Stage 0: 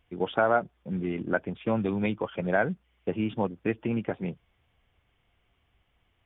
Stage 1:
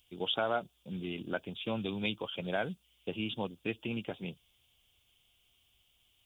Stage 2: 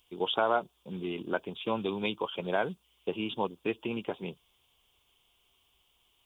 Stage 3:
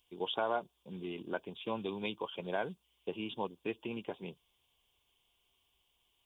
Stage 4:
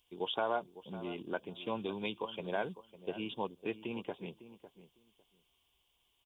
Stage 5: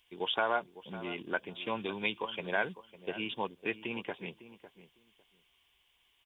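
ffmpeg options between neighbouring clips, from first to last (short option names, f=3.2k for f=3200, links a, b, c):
-af "aexciter=amount=11.8:drive=5.7:freq=2.9k,volume=-8.5dB"
-af "equalizer=f=100:t=o:w=0.67:g=-5,equalizer=f=400:t=o:w=0.67:g=7,equalizer=f=1k:t=o:w=0.67:g=11"
-af "bandreject=f=1.3k:w=8.6,volume=-6dB"
-filter_complex "[0:a]asplit=2[a][b];[b]adelay=553,lowpass=f=1.4k:p=1,volume=-14dB,asplit=2[c][d];[d]adelay=553,lowpass=f=1.4k:p=1,volume=0.17[e];[a][c][e]amix=inputs=3:normalize=0"
-af "equalizer=f=1.9k:w=1.2:g=13"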